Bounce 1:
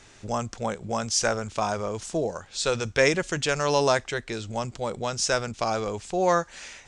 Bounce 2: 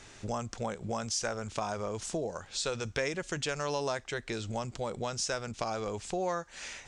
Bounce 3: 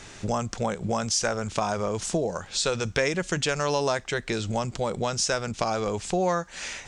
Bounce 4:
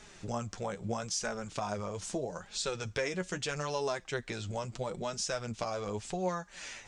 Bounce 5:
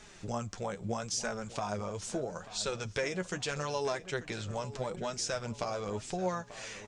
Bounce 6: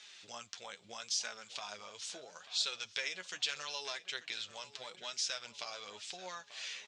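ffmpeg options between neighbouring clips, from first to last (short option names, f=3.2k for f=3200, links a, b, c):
-af "acompressor=threshold=-33dB:ratio=3"
-af "equalizer=f=180:t=o:w=0.26:g=5,volume=7.5dB"
-af "flanger=delay=4.7:depth=6.2:regen=28:speed=0.78:shape=sinusoidal,volume=-5.5dB"
-filter_complex "[0:a]asplit=2[a][b];[b]adelay=889,lowpass=f=4.3k:p=1,volume=-15dB,asplit=2[c][d];[d]adelay=889,lowpass=f=4.3k:p=1,volume=0.47,asplit=2[e][f];[f]adelay=889,lowpass=f=4.3k:p=1,volume=0.47,asplit=2[g][h];[h]adelay=889,lowpass=f=4.3k:p=1,volume=0.47[i];[a][c][e][g][i]amix=inputs=5:normalize=0"
-af "bandpass=f=3.6k:t=q:w=1.9:csg=0,volume=6.5dB"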